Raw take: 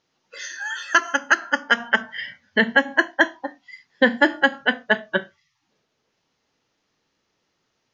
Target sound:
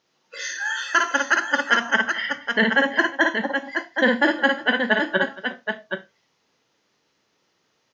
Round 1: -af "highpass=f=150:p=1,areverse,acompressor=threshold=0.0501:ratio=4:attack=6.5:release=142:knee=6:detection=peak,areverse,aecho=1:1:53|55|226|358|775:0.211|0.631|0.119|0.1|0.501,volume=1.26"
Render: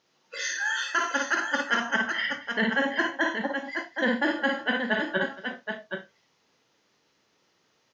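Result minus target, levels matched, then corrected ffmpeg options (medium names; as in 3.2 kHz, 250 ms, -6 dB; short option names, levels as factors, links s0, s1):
compression: peak gain reduction +8 dB
-af "highpass=f=150:p=1,areverse,acompressor=threshold=0.168:ratio=4:attack=6.5:release=142:knee=6:detection=peak,areverse,aecho=1:1:53|55|226|358|775:0.211|0.631|0.119|0.1|0.501,volume=1.26"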